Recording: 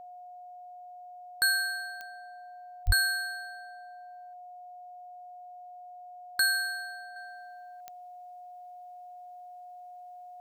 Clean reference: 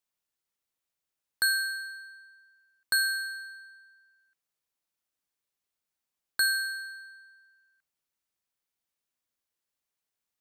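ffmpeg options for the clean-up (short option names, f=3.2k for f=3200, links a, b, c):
-filter_complex "[0:a]adeclick=t=4,bandreject=f=720:w=30,asplit=3[a][b][c];[a]afade=t=out:st=2.86:d=0.02[d];[b]highpass=f=140:w=0.5412,highpass=f=140:w=1.3066,afade=t=in:st=2.86:d=0.02,afade=t=out:st=2.98:d=0.02[e];[c]afade=t=in:st=2.98:d=0.02[f];[d][e][f]amix=inputs=3:normalize=0,asetnsamples=n=441:p=0,asendcmd='7.16 volume volume -7.5dB',volume=0dB"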